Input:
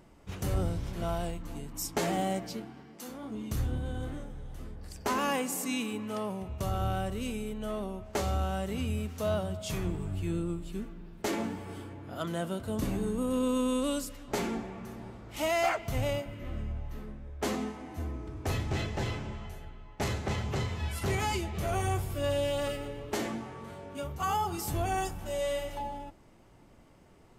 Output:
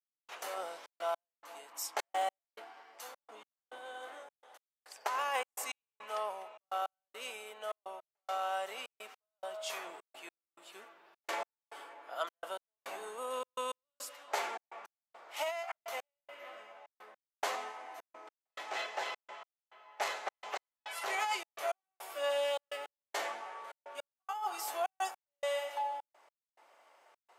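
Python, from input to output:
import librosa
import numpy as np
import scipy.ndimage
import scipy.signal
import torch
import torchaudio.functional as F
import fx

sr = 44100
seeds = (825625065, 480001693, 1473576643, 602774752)

y = scipy.signal.sosfilt(scipy.signal.butter(4, 640.0, 'highpass', fs=sr, output='sos'), x)
y = fx.peak_eq(y, sr, hz=12000.0, db=-7.5, octaves=2.6)
y = fx.over_compress(y, sr, threshold_db=-34.0, ratio=-0.5)
y = fx.step_gate(y, sr, bpm=105, pattern='..xxxx.x', floor_db=-60.0, edge_ms=4.5)
y = y * 10.0 ** (2.5 / 20.0)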